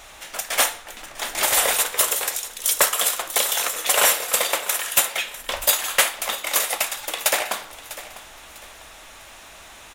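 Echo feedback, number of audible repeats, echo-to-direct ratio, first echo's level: 33%, 2, −15.5 dB, −16.0 dB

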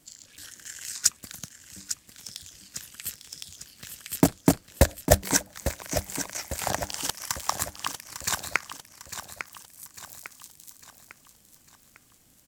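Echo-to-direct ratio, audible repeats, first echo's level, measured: −9.0 dB, 4, −10.0 dB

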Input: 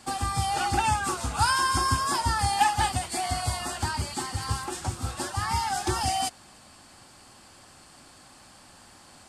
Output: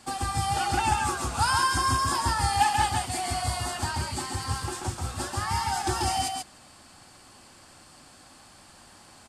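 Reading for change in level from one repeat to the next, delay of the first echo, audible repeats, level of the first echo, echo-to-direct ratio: repeats not evenly spaced, 135 ms, 1, −4.0 dB, −4.0 dB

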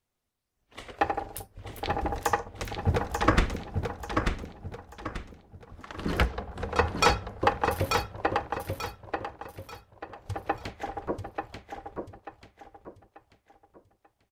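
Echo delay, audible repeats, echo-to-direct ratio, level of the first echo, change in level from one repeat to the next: 888 ms, 4, −4.5 dB, −5.0 dB, −9.0 dB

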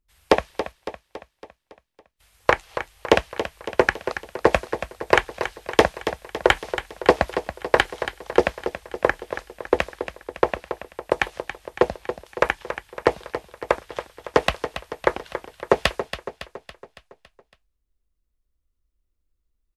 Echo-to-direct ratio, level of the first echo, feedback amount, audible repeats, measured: −9.0 dB, −10.5 dB, 54%, 5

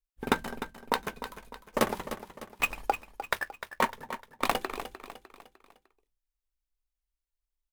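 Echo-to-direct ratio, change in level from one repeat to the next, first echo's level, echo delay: −10.5 dB, −7.0 dB, −11.5 dB, 302 ms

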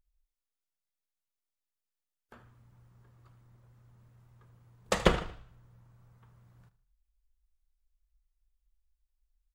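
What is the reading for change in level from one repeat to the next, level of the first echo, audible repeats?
−9.0 dB, −16.0 dB, 3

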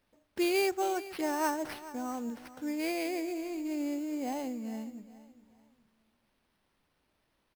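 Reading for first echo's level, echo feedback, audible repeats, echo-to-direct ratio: −16.0 dB, 31%, 2, −15.5 dB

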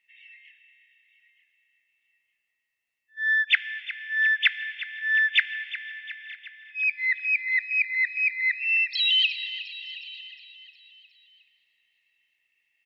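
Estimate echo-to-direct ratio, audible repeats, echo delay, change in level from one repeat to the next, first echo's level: −12.5 dB, 5, 360 ms, −4.5 dB, −14.5 dB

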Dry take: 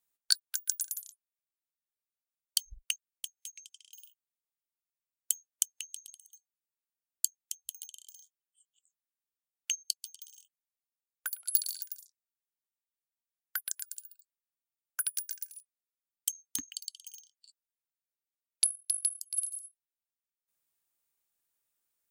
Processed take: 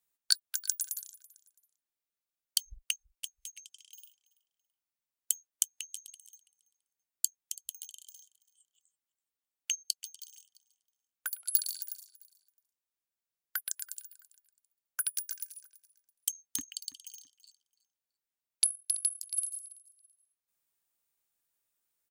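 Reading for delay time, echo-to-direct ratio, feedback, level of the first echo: 332 ms, −20.0 dB, 27%, −20.5 dB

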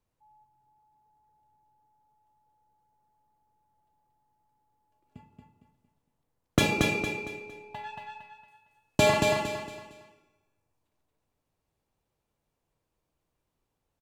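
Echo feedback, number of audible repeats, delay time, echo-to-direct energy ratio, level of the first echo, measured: 34%, 4, 229 ms, −3.0 dB, −3.5 dB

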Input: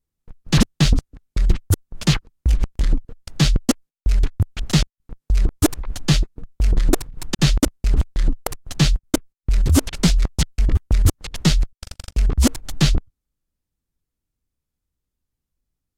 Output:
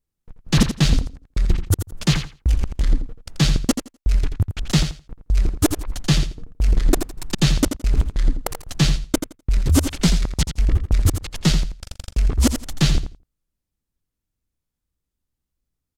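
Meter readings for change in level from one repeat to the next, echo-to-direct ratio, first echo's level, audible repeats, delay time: −15.5 dB, −9.0 dB, −9.0 dB, 2, 84 ms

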